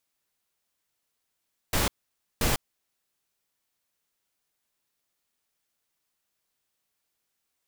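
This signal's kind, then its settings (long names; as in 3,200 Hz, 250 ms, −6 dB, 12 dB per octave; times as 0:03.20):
noise bursts pink, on 0.15 s, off 0.53 s, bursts 2, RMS −24.5 dBFS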